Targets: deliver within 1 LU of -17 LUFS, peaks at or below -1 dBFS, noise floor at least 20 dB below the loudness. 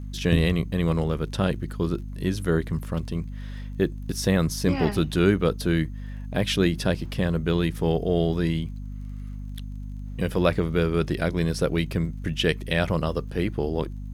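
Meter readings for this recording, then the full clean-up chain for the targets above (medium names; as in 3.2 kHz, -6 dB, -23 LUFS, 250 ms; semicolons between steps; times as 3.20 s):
tick rate 24 per s; hum 50 Hz; highest harmonic 250 Hz; hum level -32 dBFS; loudness -25.5 LUFS; peak level -7.0 dBFS; loudness target -17.0 LUFS
-> de-click; hum notches 50/100/150/200/250 Hz; trim +8.5 dB; peak limiter -1 dBFS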